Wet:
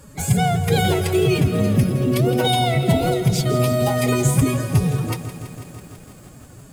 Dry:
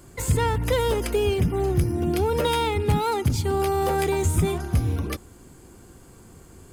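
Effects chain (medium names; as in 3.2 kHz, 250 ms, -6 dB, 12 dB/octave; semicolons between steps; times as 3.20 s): formant-preserving pitch shift +8 st; bit-crushed delay 165 ms, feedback 80%, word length 8-bit, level -13 dB; trim +4.5 dB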